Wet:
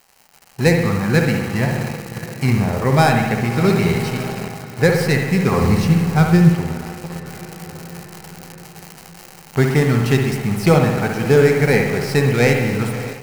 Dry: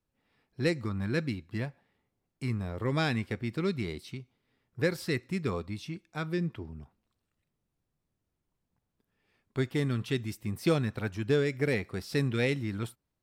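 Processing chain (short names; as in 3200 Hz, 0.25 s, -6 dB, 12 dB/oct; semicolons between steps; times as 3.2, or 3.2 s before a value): tracing distortion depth 0.066 ms; diffused feedback echo 0.619 s, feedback 62%, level -14 dB; on a send at -2.5 dB: reverb RT60 1.2 s, pre-delay 59 ms; on the sum: crackle 390/s -40 dBFS; 5.61–6.53 tone controls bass +8 dB, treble +2 dB; in parallel at -8 dB: bit-crush 6-bit; on the sum: thirty-one-band EQ 100 Hz -5 dB, 160 Hz +4 dB, 315 Hz -8 dB, 800 Hz +9 dB; AGC gain up to 14 dB; notch 3500 Hz, Q 6.1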